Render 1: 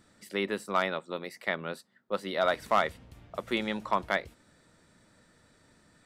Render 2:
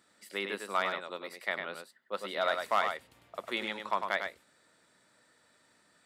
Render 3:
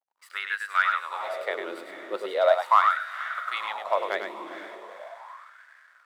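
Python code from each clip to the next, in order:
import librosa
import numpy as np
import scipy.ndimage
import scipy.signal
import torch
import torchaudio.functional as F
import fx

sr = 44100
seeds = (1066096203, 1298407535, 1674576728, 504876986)

y1 = fx.highpass(x, sr, hz=650.0, slope=6)
y1 = fx.peak_eq(y1, sr, hz=5900.0, db=-3.5, octaves=0.24)
y1 = y1 + 10.0 ** (-6.0 / 20.0) * np.pad(y1, (int(101 * sr / 1000.0), 0))[:len(y1)]
y1 = F.gain(torch.from_numpy(y1), -1.5).numpy()
y2 = fx.echo_diffused(y1, sr, ms=454, feedback_pct=47, wet_db=-8.5)
y2 = fx.backlash(y2, sr, play_db=-53.0)
y2 = fx.filter_lfo_highpass(y2, sr, shape='sine', hz=0.39, low_hz=310.0, high_hz=1600.0, q=6.2)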